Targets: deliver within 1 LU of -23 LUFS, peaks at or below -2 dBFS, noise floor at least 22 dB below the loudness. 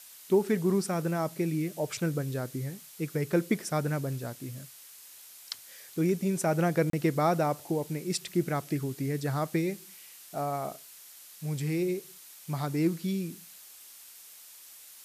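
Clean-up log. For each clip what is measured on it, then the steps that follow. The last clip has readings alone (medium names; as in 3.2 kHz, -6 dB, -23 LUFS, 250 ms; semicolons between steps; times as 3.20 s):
dropouts 1; longest dropout 33 ms; noise floor -51 dBFS; noise floor target -53 dBFS; loudness -31.0 LUFS; peak level -14.0 dBFS; loudness target -23.0 LUFS
-> interpolate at 6.90 s, 33 ms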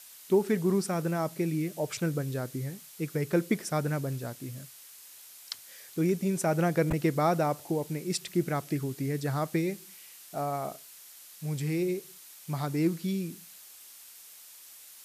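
dropouts 0; noise floor -51 dBFS; noise floor target -53 dBFS
-> noise print and reduce 6 dB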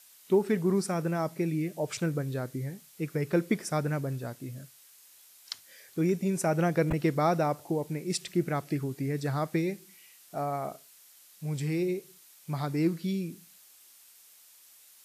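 noise floor -57 dBFS; loudness -30.5 LUFS; peak level -14.0 dBFS; loudness target -23.0 LUFS
-> trim +7.5 dB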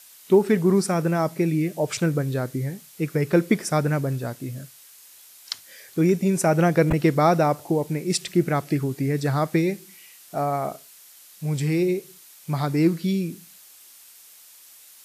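loudness -23.0 LUFS; peak level -6.5 dBFS; noise floor -49 dBFS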